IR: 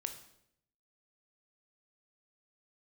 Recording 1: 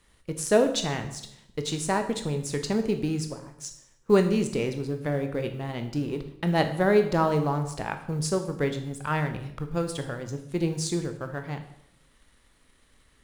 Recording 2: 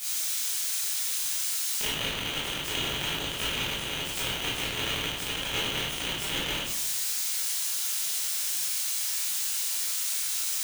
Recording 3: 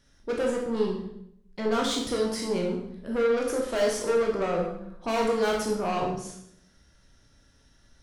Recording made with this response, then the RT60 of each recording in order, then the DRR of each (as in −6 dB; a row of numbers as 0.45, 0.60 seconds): 1; 0.75, 0.75, 0.75 seconds; 7.0, −8.5, −1.0 decibels